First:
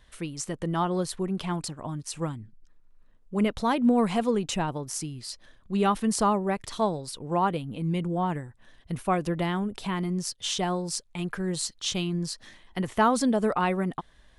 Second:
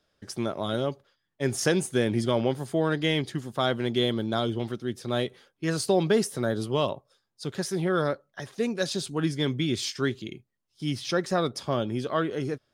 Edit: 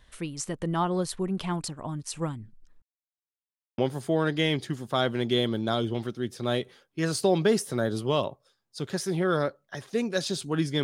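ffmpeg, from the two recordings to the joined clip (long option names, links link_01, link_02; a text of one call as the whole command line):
ffmpeg -i cue0.wav -i cue1.wav -filter_complex "[0:a]apad=whole_dur=10.83,atrim=end=10.83,asplit=2[link_01][link_02];[link_01]atrim=end=2.82,asetpts=PTS-STARTPTS,afade=type=out:start_time=2.816:duration=0.004:curve=hsin[link_03];[link_02]atrim=start=2.82:end=3.78,asetpts=PTS-STARTPTS,volume=0[link_04];[1:a]atrim=start=2.43:end=9.48,asetpts=PTS-STARTPTS,afade=type=in:duration=0.004:curve=hsin[link_05];[link_03][link_04][link_05]concat=n=3:v=0:a=1" out.wav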